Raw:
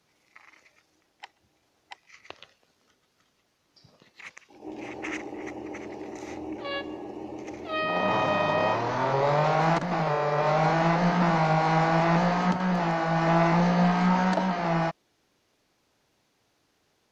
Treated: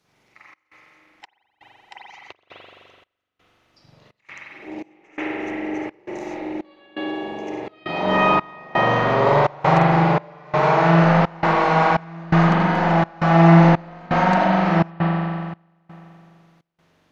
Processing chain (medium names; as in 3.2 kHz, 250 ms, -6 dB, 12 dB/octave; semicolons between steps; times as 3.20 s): spring tank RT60 2.4 s, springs 42 ms, chirp 55 ms, DRR -7.5 dB; trance gate "xxx.xxx..x" 84 bpm -24 dB